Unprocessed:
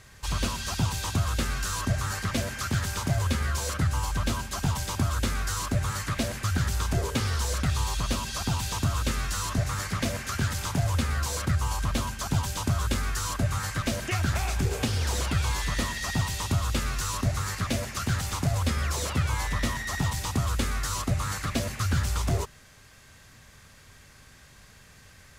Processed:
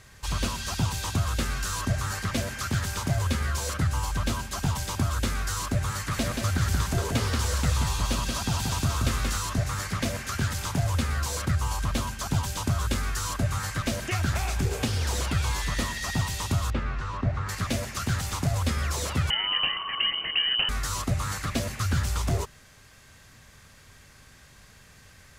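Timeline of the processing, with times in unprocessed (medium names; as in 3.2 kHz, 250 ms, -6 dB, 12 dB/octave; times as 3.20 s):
5.93–9.38 s: delay 180 ms -4 dB
16.70–17.49 s: low-pass 2 kHz
19.30–20.69 s: frequency inversion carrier 3 kHz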